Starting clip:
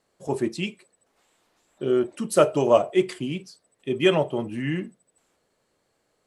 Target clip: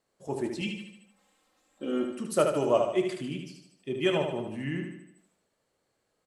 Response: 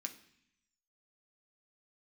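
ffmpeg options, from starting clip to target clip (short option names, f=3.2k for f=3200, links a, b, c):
-filter_complex "[0:a]asettb=1/sr,asplit=3[a][b][c];[a]atrim=end=0.614[d];[b]atrim=start=0.61:end=2.15,asetpts=PTS-STARTPTS,afade=t=in:d=0.004:c=qsin,afade=t=out:st=1.536:d=0.004:c=qsin,aecho=1:1:3.8:0.92,atrim=end_sample=67914[e];[c]atrim=start=2.146[f];[d][e]acrossfade=d=0.004:c1=hsin:c2=qsin[g];[g][f]acrossfade=d=0.004:c1=qsin:c2=hsin,aecho=1:1:75|150|225|300|375|450:0.531|0.265|0.133|0.0664|0.0332|0.0166,asplit=2[h][i];[1:a]atrim=start_sample=2205,adelay=25[j];[i][j]afir=irnorm=-1:irlink=0,volume=-13dB[k];[h][k]amix=inputs=2:normalize=0,volume=-7dB"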